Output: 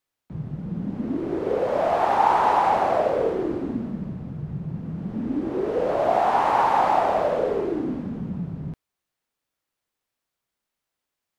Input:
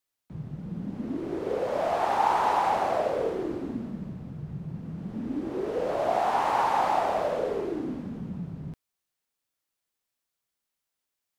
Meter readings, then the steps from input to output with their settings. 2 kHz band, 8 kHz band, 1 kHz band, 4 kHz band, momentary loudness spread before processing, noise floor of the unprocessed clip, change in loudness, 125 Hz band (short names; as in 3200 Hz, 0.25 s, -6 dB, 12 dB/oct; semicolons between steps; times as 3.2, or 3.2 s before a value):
+4.0 dB, n/a, +5.0 dB, +1.5 dB, 14 LU, -85 dBFS, +5.0 dB, +5.5 dB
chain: high shelf 3500 Hz -8 dB; gain +5.5 dB